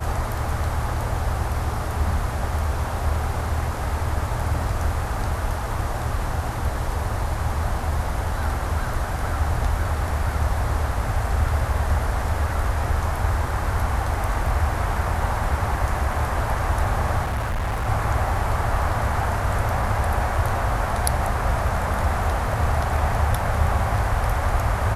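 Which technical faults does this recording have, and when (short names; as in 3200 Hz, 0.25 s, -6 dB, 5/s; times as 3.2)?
17.22–17.88 clipped -21.5 dBFS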